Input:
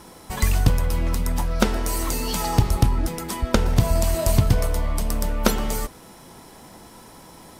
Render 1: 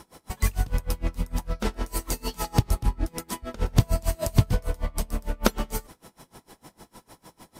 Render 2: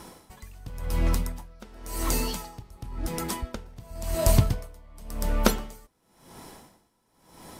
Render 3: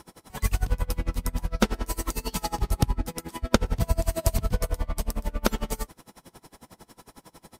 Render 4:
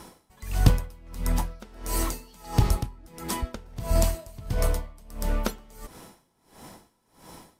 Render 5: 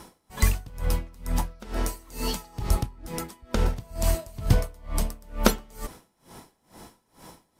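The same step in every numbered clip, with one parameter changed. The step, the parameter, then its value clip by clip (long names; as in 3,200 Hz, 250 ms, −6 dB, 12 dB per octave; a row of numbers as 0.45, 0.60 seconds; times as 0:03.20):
tremolo with a sine in dB, speed: 6.6, 0.93, 11, 1.5, 2.2 Hertz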